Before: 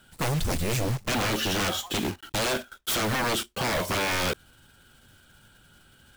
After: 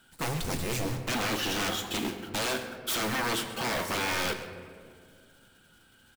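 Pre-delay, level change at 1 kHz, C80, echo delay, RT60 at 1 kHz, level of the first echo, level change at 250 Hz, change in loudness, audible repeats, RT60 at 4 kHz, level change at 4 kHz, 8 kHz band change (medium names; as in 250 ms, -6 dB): 3 ms, -3.0 dB, 9.0 dB, 134 ms, 1.8 s, -15.5 dB, -3.0 dB, -3.5 dB, 1, 1.1 s, -3.0 dB, -3.0 dB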